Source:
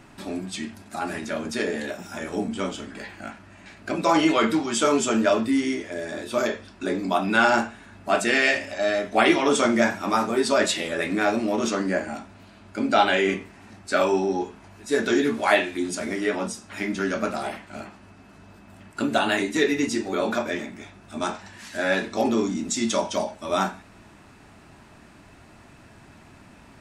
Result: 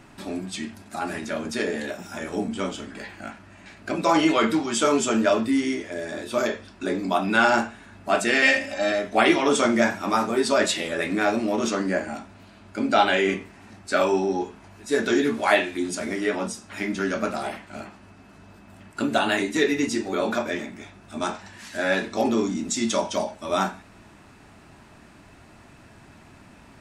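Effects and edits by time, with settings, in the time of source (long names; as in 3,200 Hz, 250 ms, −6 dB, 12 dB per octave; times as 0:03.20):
0:08.42–0:08.92: comb filter 3.8 ms, depth 75%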